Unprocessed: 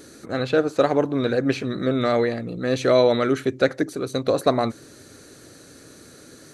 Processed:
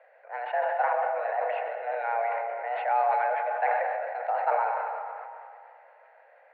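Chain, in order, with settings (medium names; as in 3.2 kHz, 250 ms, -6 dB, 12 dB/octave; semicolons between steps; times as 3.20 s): algorithmic reverb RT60 2.9 s, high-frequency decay 0.6×, pre-delay 60 ms, DRR 4.5 dB; mistuned SSB +220 Hz 350–2200 Hz; decay stretcher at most 24 dB/s; trim -8.5 dB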